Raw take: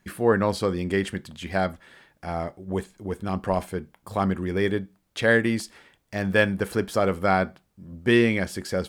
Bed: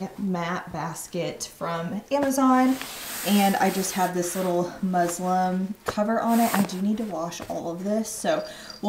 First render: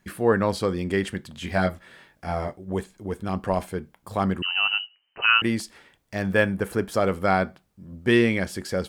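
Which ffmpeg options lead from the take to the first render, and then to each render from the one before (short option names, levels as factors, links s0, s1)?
-filter_complex "[0:a]asettb=1/sr,asplit=3[s0][s1][s2];[s0]atrim=end=1.344[s3];[s1]atrim=start=1.34:end=2.56,asetpts=PTS-STARTPTS,afade=t=in:d=0.004:c=qsin,afade=t=out:st=1.216:d=0.004:c=qsin,asplit=2[s4][s5];[s5]adelay=22,volume=0.708[s6];[s4][s6]amix=inputs=2:normalize=0,atrim=end_sample=53802[s7];[s2]atrim=start=2.556[s8];[s3][s7]acrossfade=d=0.004:c1=hsin:c2=qsin[s9];[s9][s8]acrossfade=d=0.004:c1=qsin:c2=hsin,asettb=1/sr,asplit=3[s10][s11][s12];[s10]atrim=end=4.424[s13];[s11]atrim=start=4.42:end=5.42,asetpts=PTS-STARTPTS,afade=t=in:d=0.004:c=qsin,afade=t=out:st=0.996:d=0.004:c=qsin,lowpass=f=2600:t=q:w=0.5098,lowpass=f=2600:t=q:w=0.6013,lowpass=f=2600:t=q:w=0.9,lowpass=f=2600:t=q:w=2.563,afreqshift=-3100[s14];[s12]atrim=start=5.416[s15];[s13][s14]acrossfade=d=0.004:c1=hsin:c2=qsin[s16];[s16][s15]acrossfade=d=0.004:c1=qsin:c2=hsin,asettb=1/sr,asplit=3[s17][s18][s19];[s17]atrim=end=6.334[s20];[s18]atrim=start=6.33:end=6.92,asetpts=PTS-STARTPTS,afade=t=in:d=0.004:c=qsin,afade=t=out:st=0.586:d=0.004:c=qsin,equalizer=f=4300:w=1.1:g=-6[s21];[s19]atrim=start=6.916[s22];[s20][s21]acrossfade=d=0.004:c1=hsin:c2=qsin[s23];[s23][s22]acrossfade=d=0.004:c1=qsin:c2=hsin"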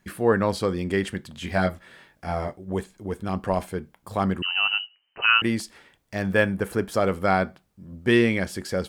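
-af anull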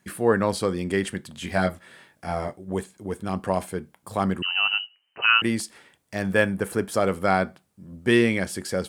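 -af "highpass=89,equalizer=f=9200:w=1.4:g=6.5"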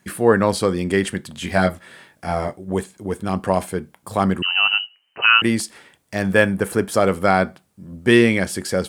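-af "volume=1.88,alimiter=limit=0.794:level=0:latency=1"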